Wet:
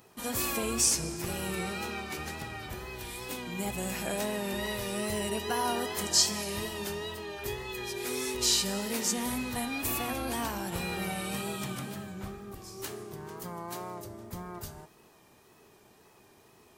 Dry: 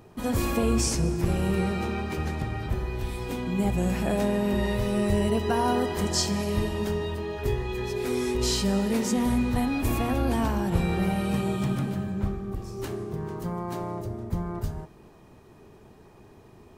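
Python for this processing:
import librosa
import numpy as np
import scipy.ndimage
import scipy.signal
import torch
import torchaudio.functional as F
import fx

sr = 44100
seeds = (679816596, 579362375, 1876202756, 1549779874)

y = fx.dmg_crackle(x, sr, seeds[0], per_s=20.0, level_db=-56.0)
y = fx.wow_flutter(y, sr, seeds[1], rate_hz=2.1, depth_cents=56.0)
y = fx.tilt_eq(y, sr, slope=3.0)
y = y * 10.0 ** (-4.0 / 20.0)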